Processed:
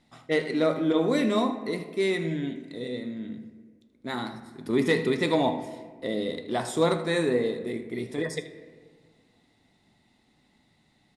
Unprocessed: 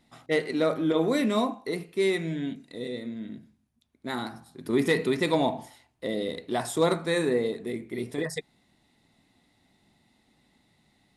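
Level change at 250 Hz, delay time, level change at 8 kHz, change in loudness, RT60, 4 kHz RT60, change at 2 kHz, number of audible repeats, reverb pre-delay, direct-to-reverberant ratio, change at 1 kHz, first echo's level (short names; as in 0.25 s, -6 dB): +1.0 dB, 79 ms, -2.0 dB, +0.5 dB, 1.6 s, 0.90 s, +0.5 dB, 1, 3 ms, 9.0 dB, +0.5 dB, -15.5 dB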